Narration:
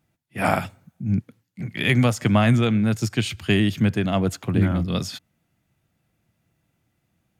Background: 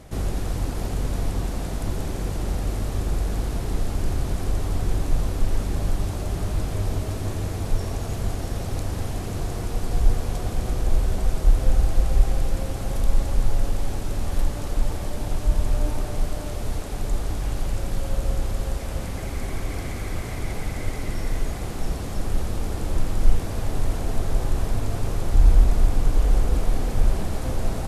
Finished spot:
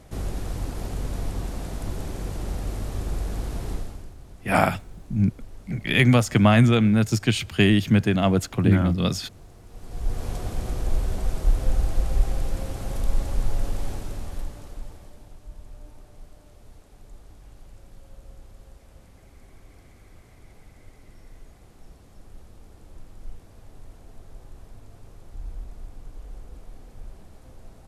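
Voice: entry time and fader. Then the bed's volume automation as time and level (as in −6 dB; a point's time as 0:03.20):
4.10 s, +1.5 dB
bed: 0:03.72 −4 dB
0:04.14 −20 dB
0:09.64 −20 dB
0:10.25 −3.5 dB
0:13.89 −3.5 dB
0:15.39 −21.5 dB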